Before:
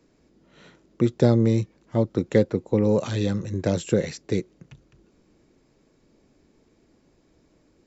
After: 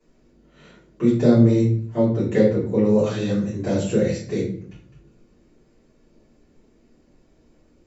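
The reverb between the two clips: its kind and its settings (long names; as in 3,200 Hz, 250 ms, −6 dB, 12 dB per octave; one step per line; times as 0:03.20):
rectangular room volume 61 cubic metres, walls mixed, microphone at 3.2 metres
level −12 dB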